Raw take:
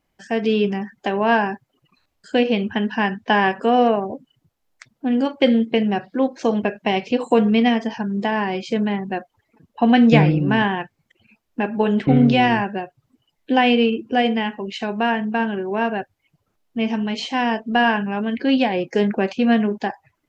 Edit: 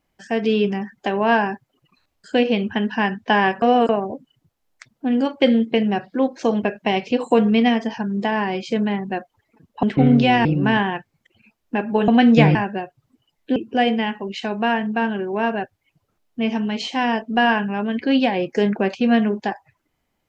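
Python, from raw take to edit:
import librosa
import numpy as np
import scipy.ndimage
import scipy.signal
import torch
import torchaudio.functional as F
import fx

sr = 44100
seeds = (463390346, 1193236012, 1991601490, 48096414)

y = fx.edit(x, sr, fx.reverse_span(start_s=3.62, length_s=0.27),
    fx.swap(start_s=9.83, length_s=0.47, other_s=11.93, other_length_s=0.62),
    fx.cut(start_s=13.56, length_s=0.38), tone=tone)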